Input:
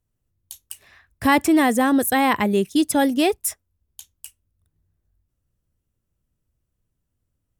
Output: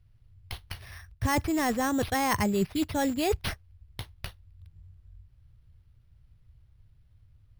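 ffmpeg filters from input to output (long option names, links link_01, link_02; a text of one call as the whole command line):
ffmpeg -i in.wav -filter_complex "[0:a]acrossover=split=5200[link_01][link_02];[link_02]acompressor=threshold=-37dB:ratio=4:attack=1:release=60[link_03];[link_01][link_03]amix=inputs=2:normalize=0,acrusher=samples=6:mix=1:aa=0.000001,areverse,acompressor=threshold=-26dB:ratio=10,areverse,lowshelf=frequency=160:width_type=q:width=1.5:gain=13,volume=3.5dB" out.wav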